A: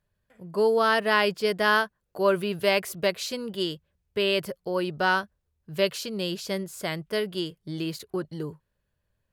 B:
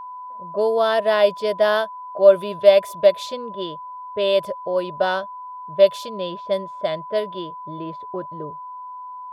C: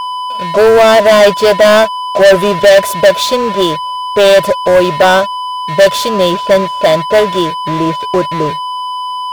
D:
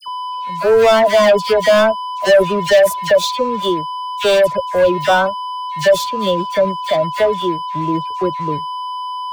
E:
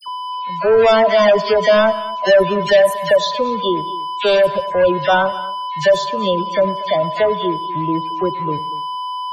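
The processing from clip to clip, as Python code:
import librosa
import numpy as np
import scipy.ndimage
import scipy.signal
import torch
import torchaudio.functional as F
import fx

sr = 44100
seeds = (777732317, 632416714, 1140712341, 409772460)

y1 = fx.small_body(x, sr, hz=(610.0, 3500.0), ring_ms=30, db=18)
y1 = fx.env_lowpass(y1, sr, base_hz=930.0, full_db=-12.0)
y1 = y1 + 10.0 ** (-29.0 / 20.0) * np.sin(2.0 * np.pi * 1000.0 * np.arange(len(y1)) / sr)
y1 = y1 * 10.0 ** (-3.5 / 20.0)
y2 = fx.leveller(y1, sr, passes=5)
y3 = fx.bin_expand(y2, sr, power=1.5)
y3 = fx.dispersion(y3, sr, late='lows', ms=81.0, hz=1800.0)
y3 = y3 * 10.0 ** (-3.5 / 20.0)
y4 = fx.spec_topn(y3, sr, count=64)
y4 = y4 + 10.0 ** (-18.0 / 20.0) * np.pad(y4, (int(235 * sr / 1000.0), 0))[:len(y4)]
y4 = fx.rev_plate(y4, sr, seeds[0], rt60_s=0.52, hf_ratio=0.45, predelay_ms=80, drr_db=17.0)
y4 = y4 * 10.0 ** (-1.0 / 20.0)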